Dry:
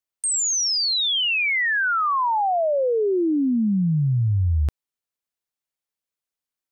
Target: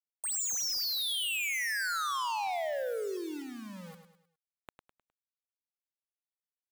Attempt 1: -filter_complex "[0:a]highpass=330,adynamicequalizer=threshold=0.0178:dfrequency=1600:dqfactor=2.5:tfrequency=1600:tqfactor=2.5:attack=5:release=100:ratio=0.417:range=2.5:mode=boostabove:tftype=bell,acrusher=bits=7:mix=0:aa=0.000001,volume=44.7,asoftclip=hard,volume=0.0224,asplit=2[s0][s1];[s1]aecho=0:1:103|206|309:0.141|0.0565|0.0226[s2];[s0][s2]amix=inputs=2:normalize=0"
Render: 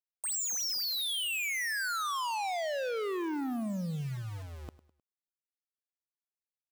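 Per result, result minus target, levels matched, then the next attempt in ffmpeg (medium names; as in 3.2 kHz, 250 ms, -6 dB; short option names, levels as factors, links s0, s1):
250 Hz band +8.0 dB; echo-to-direct -8.5 dB
-filter_complex "[0:a]highpass=940,adynamicequalizer=threshold=0.0178:dfrequency=1600:dqfactor=2.5:tfrequency=1600:tqfactor=2.5:attack=5:release=100:ratio=0.417:range=2.5:mode=boostabove:tftype=bell,acrusher=bits=7:mix=0:aa=0.000001,volume=44.7,asoftclip=hard,volume=0.0224,asplit=2[s0][s1];[s1]aecho=0:1:103|206|309:0.141|0.0565|0.0226[s2];[s0][s2]amix=inputs=2:normalize=0"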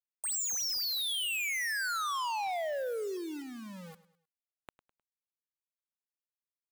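echo-to-direct -8.5 dB
-filter_complex "[0:a]highpass=940,adynamicequalizer=threshold=0.0178:dfrequency=1600:dqfactor=2.5:tfrequency=1600:tqfactor=2.5:attack=5:release=100:ratio=0.417:range=2.5:mode=boostabove:tftype=bell,acrusher=bits=7:mix=0:aa=0.000001,volume=44.7,asoftclip=hard,volume=0.0224,asplit=2[s0][s1];[s1]aecho=0:1:103|206|309|412:0.376|0.15|0.0601|0.0241[s2];[s0][s2]amix=inputs=2:normalize=0"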